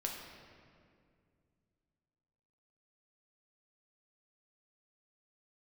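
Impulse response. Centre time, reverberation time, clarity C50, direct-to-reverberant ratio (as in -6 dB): 72 ms, 2.2 s, 2.5 dB, -0.5 dB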